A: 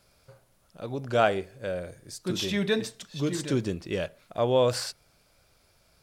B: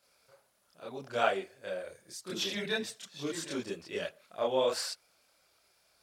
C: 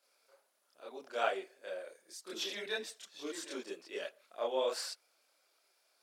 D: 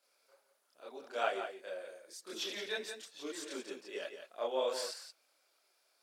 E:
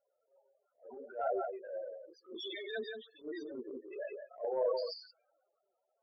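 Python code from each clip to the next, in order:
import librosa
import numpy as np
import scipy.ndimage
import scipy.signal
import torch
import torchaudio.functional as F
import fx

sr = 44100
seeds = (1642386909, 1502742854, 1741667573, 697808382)

y1 = fx.highpass(x, sr, hz=600.0, slope=6)
y1 = fx.chorus_voices(y1, sr, voices=4, hz=1.5, base_ms=28, depth_ms=3.0, mix_pct=60)
y2 = scipy.signal.sosfilt(scipy.signal.butter(4, 290.0, 'highpass', fs=sr, output='sos'), y1)
y2 = y2 * 10.0 ** (-4.5 / 20.0)
y3 = y2 + 10.0 ** (-8.5 / 20.0) * np.pad(y2, (int(173 * sr / 1000.0), 0))[:len(y2)]
y3 = y3 * 10.0 ** (-1.0 / 20.0)
y4 = fx.env_lowpass(y3, sr, base_hz=1100.0, full_db=-35.0)
y4 = fx.spec_topn(y4, sr, count=8)
y4 = fx.transient(y4, sr, attack_db=-11, sustain_db=4)
y4 = y4 * 10.0 ** (4.0 / 20.0)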